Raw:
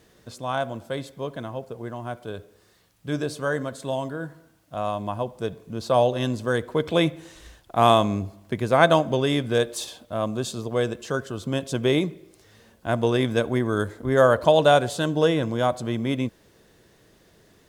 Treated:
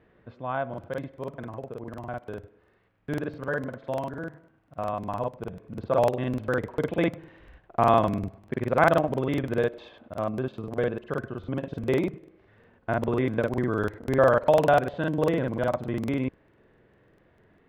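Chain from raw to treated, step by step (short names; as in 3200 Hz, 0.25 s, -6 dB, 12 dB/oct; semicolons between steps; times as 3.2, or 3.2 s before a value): LPF 2400 Hz 24 dB/oct; crackling interface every 0.10 s, samples 2048, repeat, from 0.69; gain -3 dB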